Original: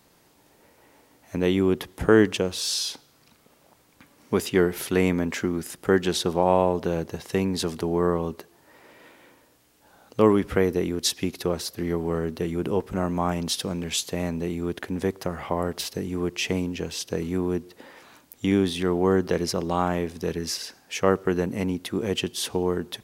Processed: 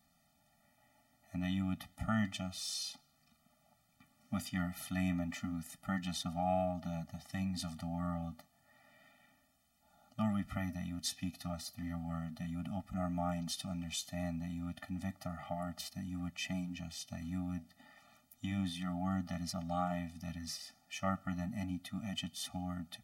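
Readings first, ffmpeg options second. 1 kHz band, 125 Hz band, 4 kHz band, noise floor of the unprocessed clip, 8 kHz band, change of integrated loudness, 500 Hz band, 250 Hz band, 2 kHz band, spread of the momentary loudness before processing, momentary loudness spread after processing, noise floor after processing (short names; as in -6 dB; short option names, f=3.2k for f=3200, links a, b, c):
-12.0 dB, -9.5 dB, -13.0 dB, -60 dBFS, -13.0 dB, -14.0 dB, -22.0 dB, -12.5 dB, -14.0 dB, 8 LU, 8 LU, -73 dBFS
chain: -af "flanger=delay=4:depth=6.7:regen=-72:speed=0.31:shape=sinusoidal,afftfilt=real='re*eq(mod(floor(b*sr/1024/290),2),0)':imag='im*eq(mod(floor(b*sr/1024/290),2),0)':win_size=1024:overlap=0.75,volume=-5.5dB"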